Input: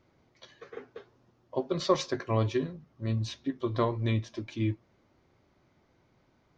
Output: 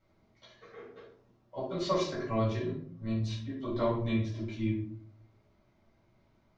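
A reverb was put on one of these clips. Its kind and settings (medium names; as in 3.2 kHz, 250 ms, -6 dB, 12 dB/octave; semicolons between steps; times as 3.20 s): simulated room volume 540 m³, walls furnished, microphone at 7.2 m; trim -12.5 dB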